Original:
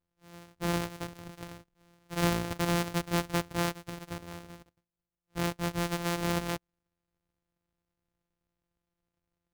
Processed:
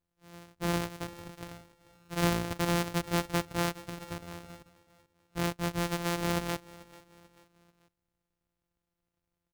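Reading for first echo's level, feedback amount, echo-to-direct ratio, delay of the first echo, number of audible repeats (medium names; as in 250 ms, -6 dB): -20.5 dB, 43%, -19.5 dB, 439 ms, 2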